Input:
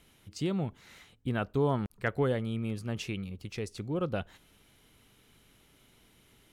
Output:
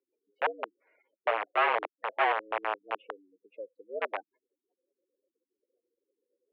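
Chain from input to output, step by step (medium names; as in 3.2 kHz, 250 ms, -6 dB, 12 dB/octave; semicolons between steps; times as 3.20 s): tilt EQ -3.5 dB/octave; spectral gate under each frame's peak -20 dB strong; integer overflow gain 17.5 dB; mistuned SSB +96 Hz 380–2600 Hz; upward expansion 1.5:1, over -39 dBFS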